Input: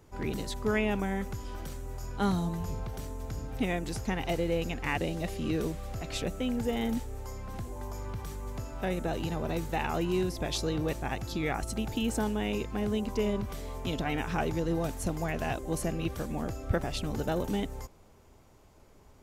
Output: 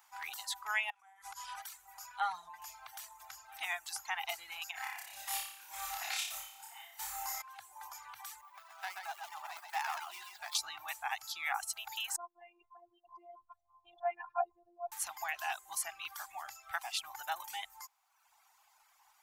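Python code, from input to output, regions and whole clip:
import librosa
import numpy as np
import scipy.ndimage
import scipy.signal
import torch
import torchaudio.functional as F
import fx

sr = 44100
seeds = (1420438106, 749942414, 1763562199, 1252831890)

y = fx.chain(x, sr, fx.steep_lowpass(hz=12000.0, slope=72),
    fx.over_compress(threshold_db=-38.0, ratio=-0.5),
    fx.room_flutter(wall_m=8.7, rt60_s=0.22), at=(0.9, 1.62))
y = fx.chain(y, sr, fx.lowpass(hz=1500.0, slope=6),
    fx.comb(ms=6.5, depth=0.77), at=(2.2, 2.62))
y = fx.chain(y, sr, fx.high_shelf(hz=11000.0, db=7.0),
    fx.over_compress(threshold_db=-37.0, ratio=-0.5),
    fx.room_flutter(wall_m=5.0, rt60_s=1.4), at=(4.71, 7.42))
y = fx.chain(y, sr, fx.median_filter(points=15),
    fx.low_shelf(hz=400.0, db=-11.0),
    fx.echo_single(ms=129, db=-3.0), at=(8.41, 10.55))
y = fx.chain(y, sr, fx.spec_expand(power=2.8),
    fx.peak_eq(hz=980.0, db=14.5, octaves=1.7),
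    fx.robotise(hz=346.0), at=(12.16, 14.92))
y = fx.dereverb_blind(y, sr, rt60_s=1.1)
y = scipy.signal.sosfilt(scipy.signal.ellip(4, 1.0, 40, 790.0, 'highpass', fs=sr, output='sos'), y)
y = fx.high_shelf(y, sr, hz=12000.0, db=10.0)
y = y * 10.0 ** (1.0 / 20.0)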